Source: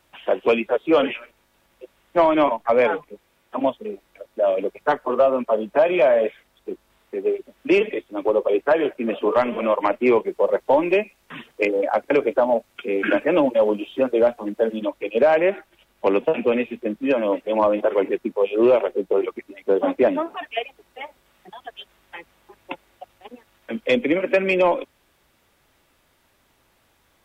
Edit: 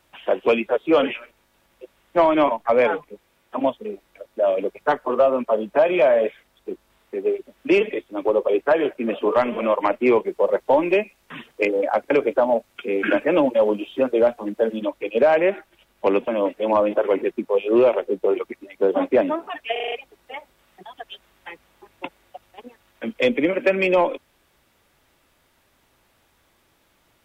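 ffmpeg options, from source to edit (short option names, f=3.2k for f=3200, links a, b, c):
-filter_complex "[0:a]asplit=7[a][b][c][d][e][f][g];[a]atrim=end=16.282[h];[b]atrim=start=17.148:end=20.632[i];[c]atrim=start=20.588:end=20.632[j];[d]atrim=start=20.588:end=20.632[k];[e]atrim=start=20.588:end=20.632[l];[f]atrim=start=20.588:end=20.632[m];[g]atrim=start=20.588[n];[h][i]acrossfade=d=0.004:c1=hsin:c2=hsin[o];[o][j]acrossfade=d=0.004:c1=hsin:c2=hsin[p];[p][k]acrossfade=d=0.004:c1=hsin:c2=hsin[q];[q][l]acrossfade=d=0.004:c1=hsin:c2=hsin[r];[r][m]acrossfade=d=0.004:c1=hsin:c2=hsin[s];[s][n]acrossfade=d=0.004:c1=hsin:c2=hsin"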